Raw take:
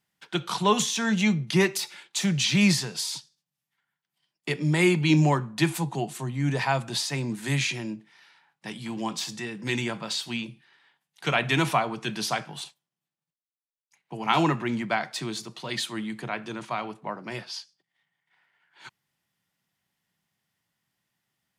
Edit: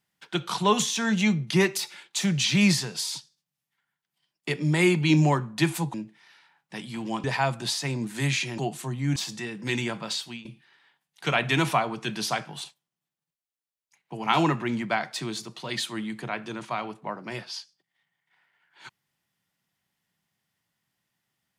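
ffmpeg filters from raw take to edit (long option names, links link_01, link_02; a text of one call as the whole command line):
ffmpeg -i in.wav -filter_complex "[0:a]asplit=6[link_01][link_02][link_03][link_04][link_05][link_06];[link_01]atrim=end=5.942[link_07];[link_02]atrim=start=7.858:end=9.162[link_08];[link_03]atrim=start=6.518:end=7.862[link_09];[link_04]atrim=start=5.938:end=6.522[link_10];[link_05]atrim=start=9.158:end=10.45,asetpts=PTS-STARTPTS,afade=type=out:start_time=0.972:duration=0.32:silence=0.158489[link_11];[link_06]atrim=start=10.45,asetpts=PTS-STARTPTS,afade=type=in:duration=0.004:curve=hsin:silence=0.158489[link_12];[link_07][link_08]acrossfade=duration=0.004:curve1=hsin:curve2=hsin[link_13];[link_13][link_09]acrossfade=duration=0.004:curve1=hsin:curve2=hsin[link_14];[link_14][link_10]acrossfade=duration=0.004:curve1=hsin:curve2=hsin[link_15];[link_11][link_12]concat=n=2:v=0:a=1[link_16];[link_15][link_16]acrossfade=duration=0.004:curve1=hsin:curve2=hsin" out.wav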